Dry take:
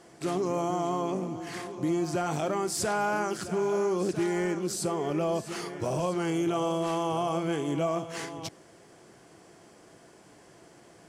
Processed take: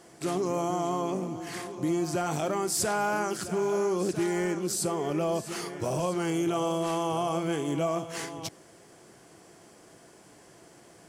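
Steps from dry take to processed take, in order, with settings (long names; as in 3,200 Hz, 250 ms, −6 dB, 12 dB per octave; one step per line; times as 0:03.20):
high-shelf EQ 8,700 Hz +8.5 dB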